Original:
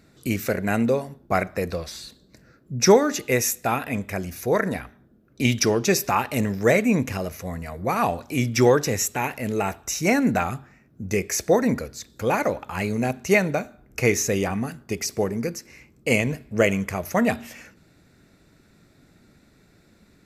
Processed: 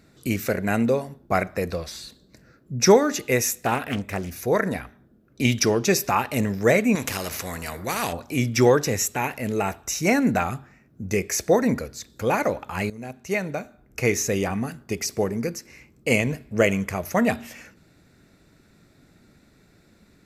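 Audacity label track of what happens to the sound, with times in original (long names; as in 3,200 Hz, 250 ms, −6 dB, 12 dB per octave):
3.450000	4.310000	highs frequency-modulated by the lows depth 0.48 ms
6.950000	8.130000	every bin compressed towards the loudest bin 2 to 1
12.900000	14.930000	fade in equal-power, from −16 dB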